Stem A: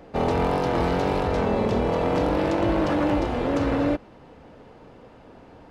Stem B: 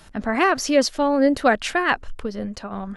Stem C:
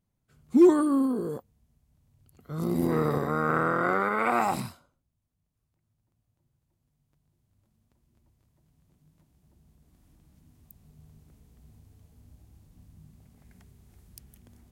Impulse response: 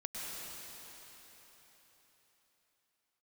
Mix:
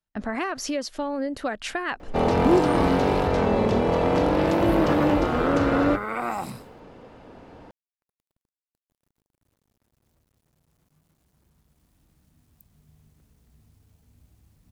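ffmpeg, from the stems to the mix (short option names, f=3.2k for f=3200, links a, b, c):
-filter_complex "[0:a]bandreject=f=60:t=h:w=6,bandreject=f=120:t=h:w=6,adelay=2000,volume=1.5dB[a];[1:a]agate=range=-39dB:threshold=-33dB:ratio=16:detection=peak,acompressor=threshold=-22dB:ratio=6,volume=-3dB[b];[2:a]acrusher=bits=10:mix=0:aa=0.000001,adelay=1900,volume=-3.5dB[c];[a][b][c]amix=inputs=3:normalize=0"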